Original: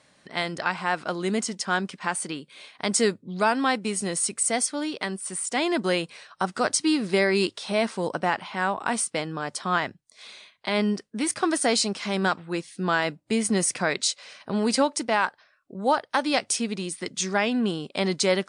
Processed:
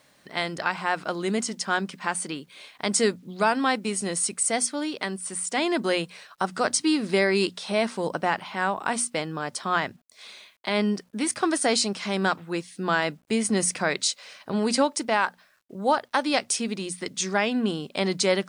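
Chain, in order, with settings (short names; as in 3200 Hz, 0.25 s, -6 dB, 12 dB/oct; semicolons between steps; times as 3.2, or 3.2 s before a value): notches 60/120/180/240 Hz; bit-crush 11-bit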